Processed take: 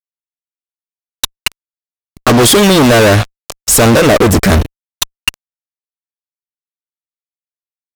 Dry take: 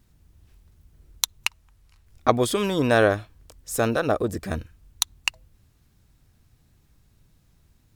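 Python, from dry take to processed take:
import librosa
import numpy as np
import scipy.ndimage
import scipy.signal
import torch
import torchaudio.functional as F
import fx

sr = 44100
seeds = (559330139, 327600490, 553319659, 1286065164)

y = fx.fuzz(x, sr, gain_db=39.0, gate_db=-42.0)
y = fx.vibrato(y, sr, rate_hz=1.1, depth_cents=7.5)
y = y * librosa.db_to_amplitude(7.5)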